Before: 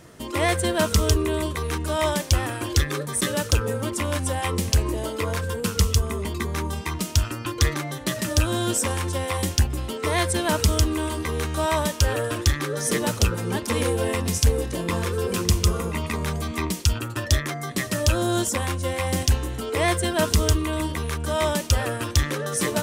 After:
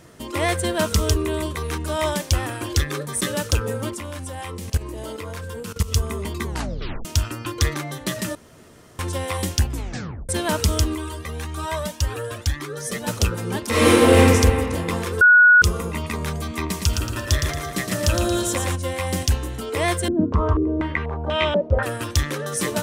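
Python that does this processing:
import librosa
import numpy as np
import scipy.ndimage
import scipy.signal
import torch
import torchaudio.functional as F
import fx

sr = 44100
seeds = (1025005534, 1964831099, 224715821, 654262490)

y = fx.level_steps(x, sr, step_db=16, at=(3.91, 5.92))
y = fx.comb_cascade(y, sr, direction='rising', hz=1.8, at=(10.95, 13.08))
y = fx.reverb_throw(y, sr, start_s=13.69, length_s=0.49, rt60_s=2.4, drr_db=-11.5)
y = fx.echo_feedback(y, sr, ms=114, feedback_pct=44, wet_db=-5, at=(16.69, 18.75), fade=0.02)
y = fx.filter_held_lowpass(y, sr, hz=4.1, low_hz=300.0, high_hz=2800.0, at=(20.08, 21.83))
y = fx.edit(y, sr, fx.tape_stop(start_s=6.45, length_s=0.6),
    fx.room_tone_fill(start_s=8.35, length_s=0.64),
    fx.tape_stop(start_s=9.7, length_s=0.59),
    fx.bleep(start_s=15.21, length_s=0.41, hz=1460.0, db=-8.0), tone=tone)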